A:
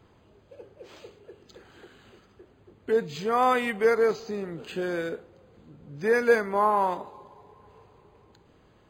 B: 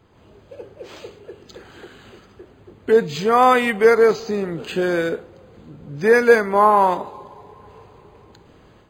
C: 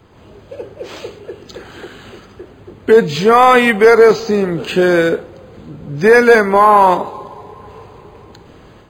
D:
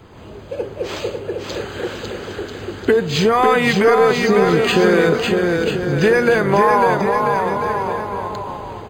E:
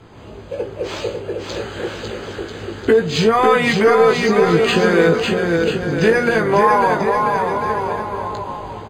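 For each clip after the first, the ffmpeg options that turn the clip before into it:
-af "dynaudnorm=f=110:g=3:m=8dB,volume=1.5dB"
-filter_complex "[0:a]acrossover=split=640|5000[a][b][c];[c]asoftclip=type=tanh:threshold=-39dB[d];[a][b][d]amix=inputs=3:normalize=0,apsyclip=10dB,volume=-1.5dB"
-filter_complex "[0:a]acompressor=threshold=-16dB:ratio=10,asplit=2[a][b];[b]aecho=0:1:550|990|1342|1624|1849:0.631|0.398|0.251|0.158|0.1[c];[a][c]amix=inputs=2:normalize=0,volume=4dB"
-filter_complex "[0:a]lowpass=12k,asplit=2[a][b];[b]adelay=18,volume=-5.5dB[c];[a][c]amix=inputs=2:normalize=0,volume=-1dB"

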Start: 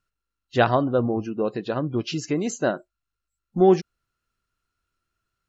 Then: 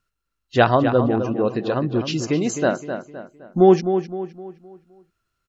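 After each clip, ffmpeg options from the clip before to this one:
-filter_complex "[0:a]asplit=2[a][b];[b]adelay=258,lowpass=f=3.5k:p=1,volume=-8.5dB,asplit=2[c][d];[d]adelay=258,lowpass=f=3.5k:p=1,volume=0.41,asplit=2[e][f];[f]adelay=258,lowpass=f=3.5k:p=1,volume=0.41,asplit=2[g][h];[h]adelay=258,lowpass=f=3.5k:p=1,volume=0.41,asplit=2[i][j];[j]adelay=258,lowpass=f=3.5k:p=1,volume=0.41[k];[a][c][e][g][i][k]amix=inputs=6:normalize=0,volume=3.5dB"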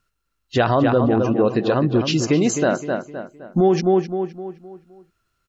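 -af "alimiter=level_in=11.5dB:limit=-1dB:release=50:level=0:latency=1,volume=-7dB"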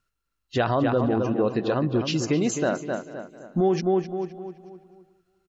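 -af "aecho=1:1:443|886:0.0891|0.0223,volume=-5.5dB"

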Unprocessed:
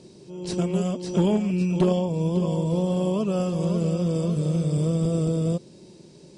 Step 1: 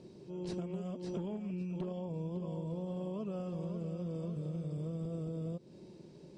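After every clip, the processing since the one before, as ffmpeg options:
-af "aemphasis=mode=reproduction:type=75kf,acompressor=threshold=-31dB:ratio=12,volume=-5dB"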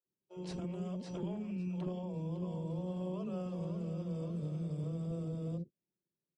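-filter_complex "[0:a]agate=range=-41dB:threshold=-44dB:ratio=16:detection=peak,acrossover=split=420[a][b];[a]adelay=60[c];[c][b]amix=inputs=2:normalize=0,volume=1dB"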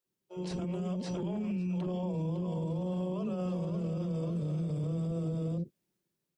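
-af "dynaudnorm=f=480:g=5:m=6dB,alimiter=level_in=10dB:limit=-24dB:level=0:latency=1,volume=-10dB,volume=6dB"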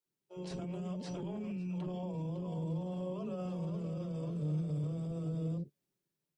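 -af "flanger=delay=6.5:depth=1:regen=61:speed=1.1:shape=triangular"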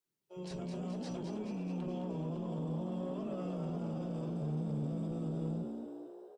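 -filter_complex "[0:a]asoftclip=type=tanh:threshold=-32.5dB,asplit=2[a][b];[b]asplit=8[c][d][e][f][g][h][i][j];[c]adelay=213,afreqshift=64,volume=-6dB[k];[d]adelay=426,afreqshift=128,volume=-10.4dB[l];[e]adelay=639,afreqshift=192,volume=-14.9dB[m];[f]adelay=852,afreqshift=256,volume=-19.3dB[n];[g]adelay=1065,afreqshift=320,volume=-23.7dB[o];[h]adelay=1278,afreqshift=384,volume=-28.2dB[p];[i]adelay=1491,afreqshift=448,volume=-32.6dB[q];[j]adelay=1704,afreqshift=512,volume=-37.1dB[r];[k][l][m][n][o][p][q][r]amix=inputs=8:normalize=0[s];[a][s]amix=inputs=2:normalize=0"

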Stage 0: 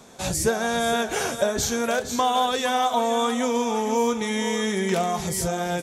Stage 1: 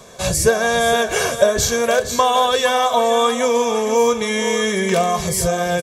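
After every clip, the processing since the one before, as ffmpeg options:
-af "aecho=1:1:1.8:0.59,volume=5.5dB"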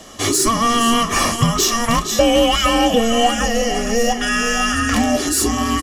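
-filter_complex "[0:a]afreqshift=-460,asplit=2[a][b];[b]highpass=f=720:p=1,volume=15dB,asoftclip=type=tanh:threshold=-0.5dB[c];[a][c]amix=inputs=2:normalize=0,lowpass=f=1k:p=1,volume=-6dB,aemphasis=mode=production:type=75kf"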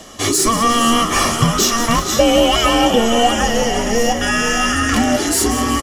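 -filter_complex "[0:a]asplit=9[a][b][c][d][e][f][g][h][i];[b]adelay=183,afreqshift=75,volume=-11.5dB[j];[c]adelay=366,afreqshift=150,volume=-15.5dB[k];[d]adelay=549,afreqshift=225,volume=-19.5dB[l];[e]adelay=732,afreqshift=300,volume=-23.5dB[m];[f]adelay=915,afreqshift=375,volume=-27.6dB[n];[g]adelay=1098,afreqshift=450,volume=-31.6dB[o];[h]adelay=1281,afreqshift=525,volume=-35.6dB[p];[i]adelay=1464,afreqshift=600,volume=-39.6dB[q];[a][j][k][l][m][n][o][p][q]amix=inputs=9:normalize=0,areverse,acompressor=mode=upward:threshold=-26dB:ratio=2.5,areverse,volume=1dB"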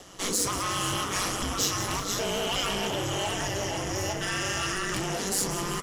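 -filter_complex "[0:a]aeval=exprs='val(0)*sin(2*PI*96*n/s)':c=same,flanger=delay=2.3:depth=7.3:regen=-73:speed=1.5:shape=triangular,acrossover=split=2900[a][b];[a]asoftclip=type=hard:threshold=-25.5dB[c];[c][b]amix=inputs=2:normalize=0,volume=-3dB"

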